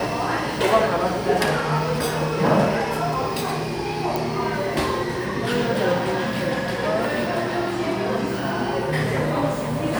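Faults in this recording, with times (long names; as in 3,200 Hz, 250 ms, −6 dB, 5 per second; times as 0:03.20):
0:04.16: click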